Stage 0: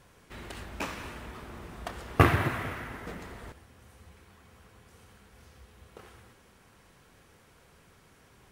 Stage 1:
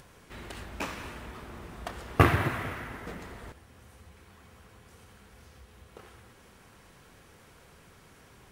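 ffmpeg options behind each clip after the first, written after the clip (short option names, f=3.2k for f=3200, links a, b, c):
-af "acompressor=mode=upward:threshold=-49dB:ratio=2.5"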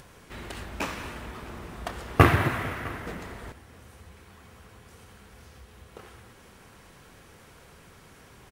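-af "aecho=1:1:657:0.0841,volume=3.5dB"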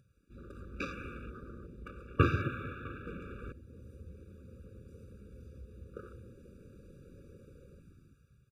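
-af "dynaudnorm=f=280:g=7:m=10dB,afwtdn=0.0126,afftfilt=real='re*eq(mod(floor(b*sr/1024/570),2),0)':imag='im*eq(mod(floor(b*sr/1024/570),2),0)':win_size=1024:overlap=0.75,volume=-8.5dB"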